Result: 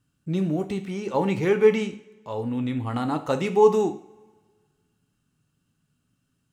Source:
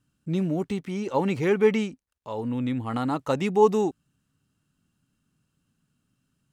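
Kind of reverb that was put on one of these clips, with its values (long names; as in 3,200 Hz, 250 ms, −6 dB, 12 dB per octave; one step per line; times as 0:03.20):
coupled-rooms reverb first 0.46 s, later 1.7 s, from −21 dB, DRR 6.5 dB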